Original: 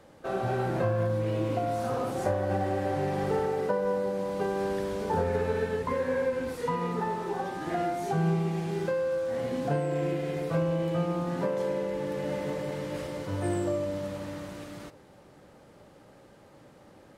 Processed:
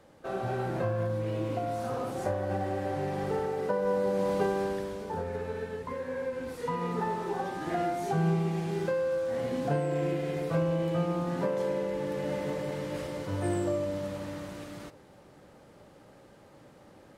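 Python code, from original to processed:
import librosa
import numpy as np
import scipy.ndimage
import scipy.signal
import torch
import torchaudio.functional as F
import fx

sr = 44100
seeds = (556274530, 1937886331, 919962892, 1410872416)

y = fx.gain(x, sr, db=fx.line((3.56, -3.0), (4.31, 4.0), (5.07, -7.0), (6.1, -7.0), (7.0, -0.5)))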